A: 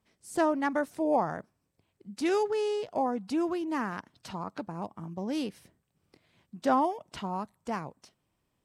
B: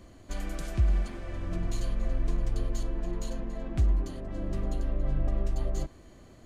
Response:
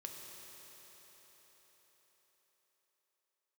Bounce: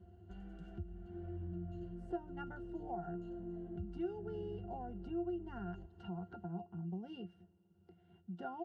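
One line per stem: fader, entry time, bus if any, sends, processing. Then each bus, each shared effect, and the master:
+0.5 dB, 1.75 s, send -20.5 dB, three-band squash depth 40%
0.0 dB, 0.00 s, send -4 dB, HPF 41 Hz; compressor 6:1, threshold -36 dBFS, peak gain reduction 15 dB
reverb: on, RT60 5.1 s, pre-delay 3 ms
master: octave resonator F, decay 0.13 s; compressor 2:1, threshold -41 dBFS, peak gain reduction 8 dB

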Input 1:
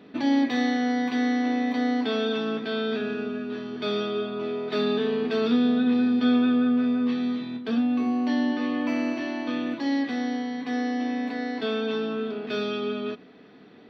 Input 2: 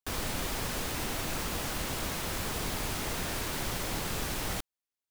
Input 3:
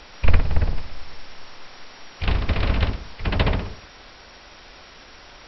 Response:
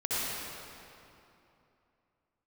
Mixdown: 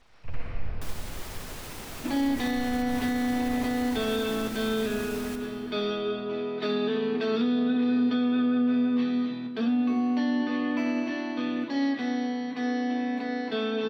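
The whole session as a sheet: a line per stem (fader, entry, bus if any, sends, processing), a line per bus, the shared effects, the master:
-2.0 dB, 1.90 s, no bus, send -22.5 dB, dry
0.0 dB, 0.75 s, bus A, send -20 dB, limiter -25.5 dBFS, peak gain reduction 4.5 dB
-15.0 dB, 0.00 s, bus A, send -4.5 dB, high shelf 4300 Hz -10.5 dB; flange 1.9 Hz, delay 4.2 ms, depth 6.6 ms, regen -1%; full-wave rectifier
bus A: 0.0 dB, auto swell 0.168 s; compressor 2.5:1, threshold -42 dBFS, peak gain reduction 10.5 dB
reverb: on, RT60 2.9 s, pre-delay 58 ms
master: limiter -18.5 dBFS, peak gain reduction 5 dB

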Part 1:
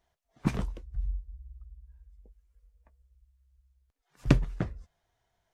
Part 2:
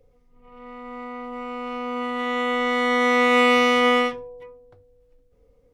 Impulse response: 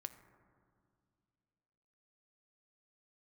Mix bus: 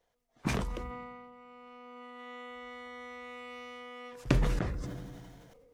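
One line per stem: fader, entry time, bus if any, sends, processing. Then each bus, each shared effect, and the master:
-3.0 dB, 0.00 s, muted 0.91–2.5, send -13.5 dB, dry
-20.0 dB, 0.00 s, no send, limiter -16 dBFS, peak gain reduction 9 dB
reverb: on, RT60 2.4 s, pre-delay 4 ms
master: low shelf 160 Hz -10 dB; sustainer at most 29 dB/s

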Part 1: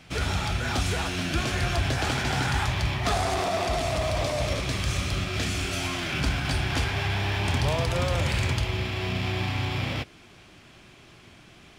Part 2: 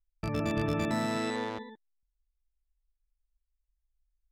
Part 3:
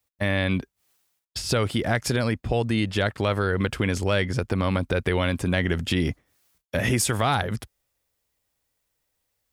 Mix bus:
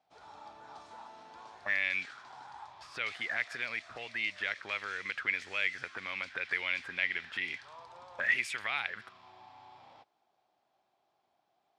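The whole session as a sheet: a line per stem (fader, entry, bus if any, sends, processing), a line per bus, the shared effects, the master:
-12.0 dB, 0.00 s, no send, band shelf 5900 Hz +12 dB
-11.0 dB, 0.00 s, no send, dry
+3.0 dB, 1.45 s, no send, dry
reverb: off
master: auto-wah 760–2300 Hz, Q 4.9, up, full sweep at -16 dBFS

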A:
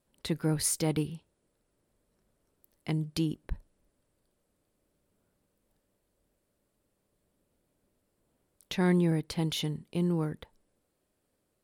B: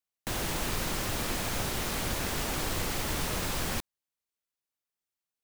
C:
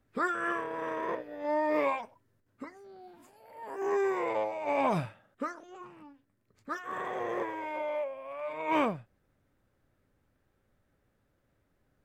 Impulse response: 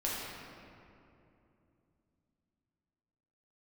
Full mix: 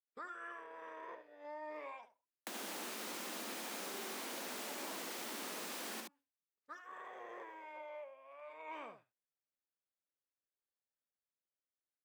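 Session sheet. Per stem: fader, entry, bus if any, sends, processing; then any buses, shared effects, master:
off
-3.0 dB, 2.20 s, bus A, no send, echo send -12 dB, steep high-pass 190 Hz 72 dB/oct
-13.5 dB, 0.00 s, bus A, no send, echo send -15 dB, weighting filter A
bus A: 0.0 dB, expander -60 dBFS; compressor, threshold -44 dBFS, peak gain reduction 11 dB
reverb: off
echo: echo 72 ms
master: bell 170 Hz -4.5 dB 0.75 oct

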